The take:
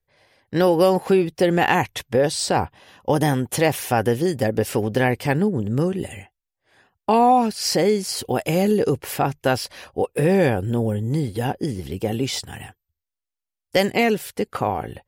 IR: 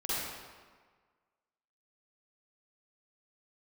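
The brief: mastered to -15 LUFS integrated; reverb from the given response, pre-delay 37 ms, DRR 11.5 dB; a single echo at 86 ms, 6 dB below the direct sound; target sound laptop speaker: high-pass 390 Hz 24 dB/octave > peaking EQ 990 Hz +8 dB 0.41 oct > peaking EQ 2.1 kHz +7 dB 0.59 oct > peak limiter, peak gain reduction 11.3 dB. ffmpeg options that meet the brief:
-filter_complex "[0:a]aecho=1:1:86:0.501,asplit=2[s0][s1];[1:a]atrim=start_sample=2205,adelay=37[s2];[s1][s2]afir=irnorm=-1:irlink=0,volume=0.126[s3];[s0][s3]amix=inputs=2:normalize=0,highpass=f=390:w=0.5412,highpass=f=390:w=1.3066,equalizer=f=990:t=o:w=0.41:g=8,equalizer=f=2100:t=o:w=0.59:g=7,volume=2.51,alimiter=limit=0.668:level=0:latency=1"

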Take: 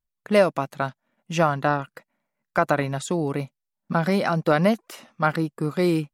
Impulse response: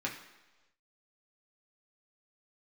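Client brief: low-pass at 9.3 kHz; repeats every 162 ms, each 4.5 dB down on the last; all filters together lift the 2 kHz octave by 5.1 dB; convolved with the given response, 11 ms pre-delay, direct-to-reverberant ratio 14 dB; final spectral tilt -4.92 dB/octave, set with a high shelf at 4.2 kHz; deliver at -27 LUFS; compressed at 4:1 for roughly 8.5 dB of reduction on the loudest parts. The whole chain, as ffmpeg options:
-filter_complex "[0:a]lowpass=9300,equalizer=f=2000:t=o:g=8,highshelf=f=4200:g=-4.5,acompressor=threshold=0.0708:ratio=4,aecho=1:1:162|324|486|648|810|972|1134|1296|1458:0.596|0.357|0.214|0.129|0.0772|0.0463|0.0278|0.0167|0.01,asplit=2[s0][s1];[1:a]atrim=start_sample=2205,adelay=11[s2];[s1][s2]afir=irnorm=-1:irlink=0,volume=0.126[s3];[s0][s3]amix=inputs=2:normalize=0,volume=1.06"

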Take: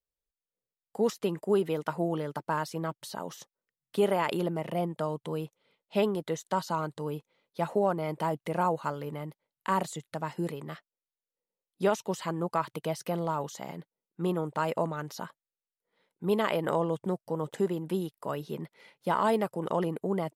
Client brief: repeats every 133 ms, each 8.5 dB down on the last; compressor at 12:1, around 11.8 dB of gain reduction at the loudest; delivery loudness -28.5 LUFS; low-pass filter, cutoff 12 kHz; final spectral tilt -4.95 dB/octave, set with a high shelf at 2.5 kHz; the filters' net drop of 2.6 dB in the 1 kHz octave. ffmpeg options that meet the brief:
-af "lowpass=12000,equalizer=f=1000:t=o:g=-4,highshelf=f=2500:g=6,acompressor=threshold=0.0224:ratio=12,aecho=1:1:133|266|399|532:0.376|0.143|0.0543|0.0206,volume=3.35"

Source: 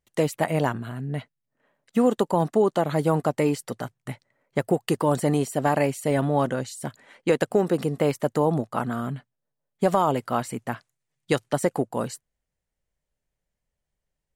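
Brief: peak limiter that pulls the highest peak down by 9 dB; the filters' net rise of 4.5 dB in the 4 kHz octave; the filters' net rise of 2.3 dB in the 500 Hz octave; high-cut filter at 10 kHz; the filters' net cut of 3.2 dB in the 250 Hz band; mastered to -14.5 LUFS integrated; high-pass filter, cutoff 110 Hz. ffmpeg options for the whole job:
-af "highpass=110,lowpass=10000,equalizer=f=250:t=o:g=-5.5,equalizer=f=500:t=o:g=4,equalizer=f=4000:t=o:g=6,volume=5.01,alimiter=limit=0.841:level=0:latency=1"

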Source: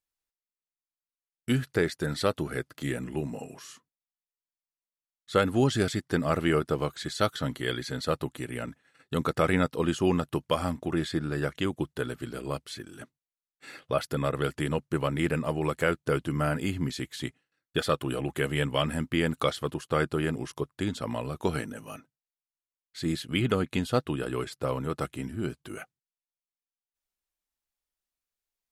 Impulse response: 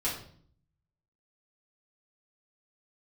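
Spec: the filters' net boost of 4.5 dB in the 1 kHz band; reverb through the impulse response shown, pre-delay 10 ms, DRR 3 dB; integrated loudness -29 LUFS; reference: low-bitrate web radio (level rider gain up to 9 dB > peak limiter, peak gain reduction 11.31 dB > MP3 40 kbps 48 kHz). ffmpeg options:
-filter_complex "[0:a]equalizer=f=1000:t=o:g=6,asplit=2[s0][s1];[1:a]atrim=start_sample=2205,adelay=10[s2];[s1][s2]afir=irnorm=-1:irlink=0,volume=0.335[s3];[s0][s3]amix=inputs=2:normalize=0,dynaudnorm=m=2.82,alimiter=limit=0.2:level=0:latency=1,volume=0.75" -ar 48000 -c:a libmp3lame -b:a 40k

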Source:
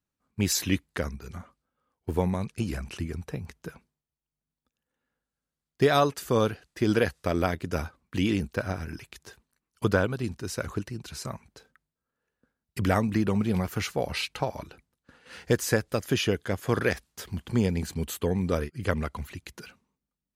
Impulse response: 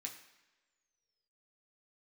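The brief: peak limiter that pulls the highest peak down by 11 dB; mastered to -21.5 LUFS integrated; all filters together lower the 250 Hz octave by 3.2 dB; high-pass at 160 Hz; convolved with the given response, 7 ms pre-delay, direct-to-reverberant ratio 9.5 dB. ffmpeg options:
-filter_complex "[0:a]highpass=160,equalizer=f=250:t=o:g=-3,alimiter=limit=0.112:level=0:latency=1,asplit=2[s0][s1];[1:a]atrim=start_sample=2205,adelay=7[s2];[s1][s2]afir=irnorm=-1:irlink=0,volume=0.473[s3];[s0][s3]amix=inputs=2:normalize=0,volume=3.76"

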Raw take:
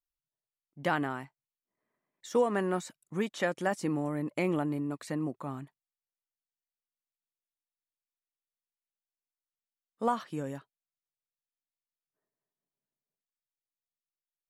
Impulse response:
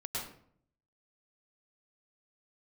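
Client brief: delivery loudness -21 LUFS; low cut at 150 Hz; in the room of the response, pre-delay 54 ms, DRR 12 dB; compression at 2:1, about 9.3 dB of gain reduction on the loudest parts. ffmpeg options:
-filter_complex "[0:a]highpass=150,acompressor=threshold=0.0112:ratio=2,asplit=2[s0][s1];[1:a]atrim=start_sample=2205,adelay=54[s2];[s1][s2]afir=irnorm=-1:irlink=0,volume=0.188[s3];[s0][s3]amix=inputs=2:normalize=0,volume=8.91"

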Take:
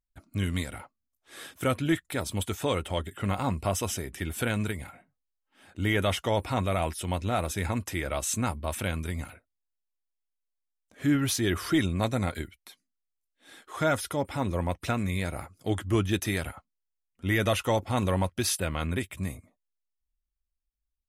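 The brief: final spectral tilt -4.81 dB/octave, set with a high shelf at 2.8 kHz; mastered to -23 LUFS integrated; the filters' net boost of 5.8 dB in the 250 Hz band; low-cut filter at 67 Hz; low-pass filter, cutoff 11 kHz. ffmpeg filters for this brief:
-af "highpass=67,lowpass=11000,equalizer=f=250:t=o:g=7.5,highshelf=f=2800:g=5,volume=1.5"

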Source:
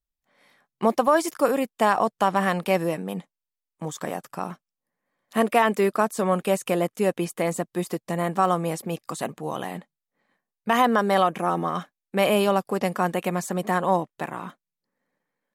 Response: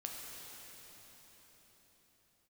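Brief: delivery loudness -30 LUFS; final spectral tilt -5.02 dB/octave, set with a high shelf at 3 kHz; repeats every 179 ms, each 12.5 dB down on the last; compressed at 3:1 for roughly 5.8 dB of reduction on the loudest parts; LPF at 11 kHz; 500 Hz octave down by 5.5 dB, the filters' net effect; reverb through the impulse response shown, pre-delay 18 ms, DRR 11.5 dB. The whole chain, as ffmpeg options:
-filter_complex "[0:a]lowpass=11000,equalizer=f=500:t=o:g=-7,highshelf=f=3000:g=-4,acompressor=threshold=0.0562:ratio=3,aecho=1:1:179|358|537:0.237|0.0569|0.0137,asplit=2[s0][s1];[1:a]atrim=start_sample=2205,adelay=18[s2];[s1][s2]afir=irnorm=-1:irlink=0,volume=0.282[s3];[s0][s3]amix=inputs=2:normalize=0,volume=1.06"

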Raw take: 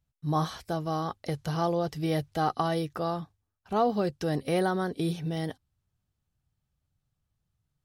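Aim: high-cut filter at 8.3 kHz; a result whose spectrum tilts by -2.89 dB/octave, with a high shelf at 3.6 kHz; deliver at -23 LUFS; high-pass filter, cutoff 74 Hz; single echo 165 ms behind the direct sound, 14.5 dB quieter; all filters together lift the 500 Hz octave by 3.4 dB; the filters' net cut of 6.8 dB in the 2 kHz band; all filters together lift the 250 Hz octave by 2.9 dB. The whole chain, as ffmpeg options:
-af "highpass=74,lowpass=8300,equalizer=f=250:t=o:g=3.5,equalizer=f=500:t=o:g=4,equalizer=f=2000:t=o:g=-9,highshelf=f=3600:g=-6,aecho=1:1:165:0.188,volume=1.78"

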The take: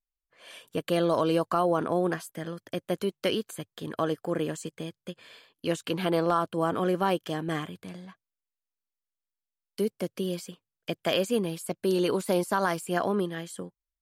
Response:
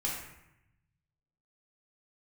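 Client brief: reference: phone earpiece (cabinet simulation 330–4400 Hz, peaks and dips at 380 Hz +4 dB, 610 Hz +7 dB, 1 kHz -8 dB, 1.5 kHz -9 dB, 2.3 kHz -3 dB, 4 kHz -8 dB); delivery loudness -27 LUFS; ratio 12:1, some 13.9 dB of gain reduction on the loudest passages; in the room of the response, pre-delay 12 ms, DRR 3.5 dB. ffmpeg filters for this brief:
-filter_complex "[0:a]acompressor=threshold=0.0178:ratio=12,asplit=2[s0][s1];[1:a]atrim=start_sample=2205,adelay=12[s2];[s1][s2]afir=irnorm=-1:irlink=0,volume=0.398[s3];[s0][s3]amix=inputs=2:normalize=0,highpass=330,equalizer=f=380:t=q:w=4:g=4,equalizer=f=610:t=q:w=4:g=7,equalizer=f=1000:t=q:w=4:g=-8,equalizer=f=1500:t=q:w=4:g=-9,equalizer=f=2300:t=q:w=4:g=-3,equalizer=f=4000:t=q:w=4:g=-8,lowpass=f=4400:w=0.5412,lowpass=f=4400:w=1.3066,volume=4.47"

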